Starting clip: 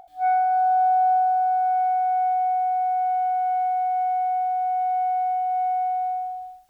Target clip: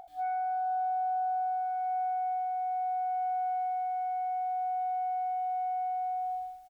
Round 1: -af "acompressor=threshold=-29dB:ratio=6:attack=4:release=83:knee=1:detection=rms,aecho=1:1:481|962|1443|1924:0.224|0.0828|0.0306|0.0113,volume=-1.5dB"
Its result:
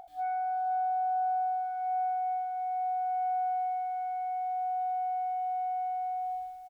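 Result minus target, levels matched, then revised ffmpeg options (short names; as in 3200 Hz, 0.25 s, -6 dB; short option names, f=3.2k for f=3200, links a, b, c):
echo-to-direct +8.5 dB
-af "acompressor=threshold=-29dB:ratio=6:attack=4:release=83:knee=1:detection=rms,aecho=1:1:481|962|1443:0.0841|0.0311|0.0115,volume=-1.5dB"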